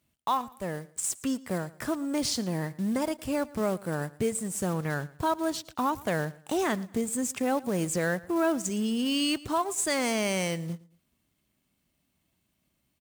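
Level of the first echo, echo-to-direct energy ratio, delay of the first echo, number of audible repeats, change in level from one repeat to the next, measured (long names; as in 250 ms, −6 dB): −21.0 dB, −20.5 dB, 113 ms, 2, −10.0 dB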